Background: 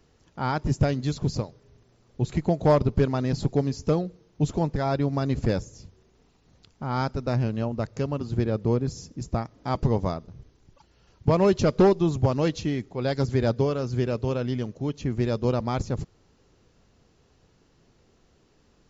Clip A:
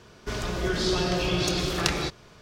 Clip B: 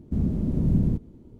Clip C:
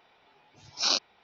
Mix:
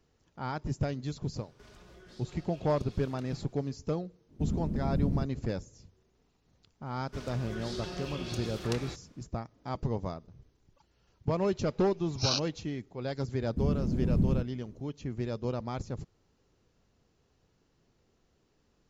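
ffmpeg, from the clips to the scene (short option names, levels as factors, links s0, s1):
-filter_complex "[1:a]asplit=2[s0][s1];[2:a]asplit=2[s2][s3];[0:a]volume=0.355[s4];[s0]acompressor=threshold=0.0158:ratio=6:attack=3.2:release=140:knee=1:detection=peak,atrim=end=2.41,asetpts=PTS-STARTPTS,volume=0.178,afade=t=in:d=0.004:c=hsin,afade=t=out:st=2.406:d=0.004:c=hsin,adelay=1330[s5];[s2]atrim=end=1.39,asetpts=PTS-STARTPTS,volume=0.422,afade=t=in:d=0.05,afade=t=out:st=1.34:d=0.05,adelay=4280[s6];[s1]atrim=end=2.41,asetpts=PTS-STARTPTS,volume=0.2,afade=t=in:d=0.004:c=hsin,afade=t=out:st=2.406:d=0.004:c=hsin,adelay=6860[s7];[3:a]atrim=end=1.23,asetpts=PTS-STARTPTS,volume=0.562,afade=t=in:d=0.004:c=hsin,afade=t=out:st=1.226:d=0.004:c=hsin,adelay=11410[s8];[s3]atrim=end=1.39,asetpts=PTS-STARTPTS,volume=0.562,afade=t=in:d=0.004:c=hsin,afade=t=out:st=1.386:d=0.004:c=hsin,adelay=13450[s9];[s4][s5][s6][s7][s8][s9]amix=inputs=6:normalize=0"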